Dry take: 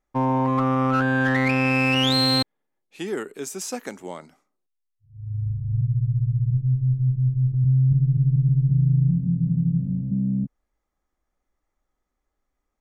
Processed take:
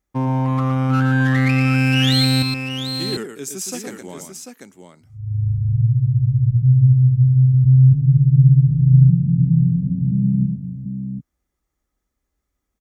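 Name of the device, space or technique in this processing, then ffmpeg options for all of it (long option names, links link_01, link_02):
smiley-face EQ: -af "highpass=55,lowshelf=frequency=170:gain=9,equalizer=frequency=770:width_type=o:width=1.6:gain=-5,highshelf=frequency=5100:gain=6.5,aecho=1:1:116|742:0.473|0.422"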